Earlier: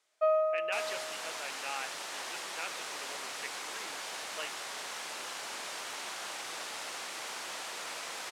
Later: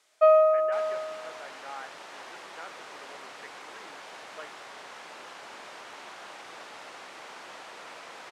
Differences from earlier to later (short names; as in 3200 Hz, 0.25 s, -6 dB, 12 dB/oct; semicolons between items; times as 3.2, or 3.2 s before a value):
speech: add polynomial smoothing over 41 samples; first sound +9.0 dB; second sound: add LPF 1700 Hz 6 dB/oct